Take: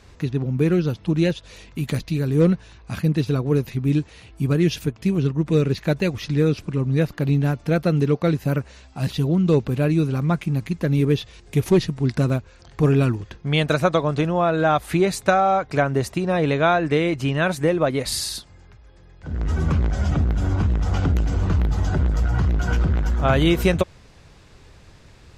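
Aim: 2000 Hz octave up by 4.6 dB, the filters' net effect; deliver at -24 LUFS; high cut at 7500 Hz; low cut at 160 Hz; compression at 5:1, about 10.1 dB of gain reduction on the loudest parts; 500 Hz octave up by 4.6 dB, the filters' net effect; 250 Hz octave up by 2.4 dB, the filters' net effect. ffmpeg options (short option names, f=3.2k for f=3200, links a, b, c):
-af "highpass=160,lowpass=7.5k,equalizer=f=250:t=o:g=3.5,equalizer=f=500:t=o:g=4.5,equalizer=f=2k:t=o:g=6,acompressor=threshold=-20dB:ratio=5,volume=2dB"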